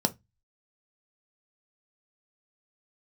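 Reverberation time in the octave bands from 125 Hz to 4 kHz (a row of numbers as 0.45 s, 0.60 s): 0.40 s, 0.25 s, 0.15 s, 0.15 s, 0.20 s, 0.15 s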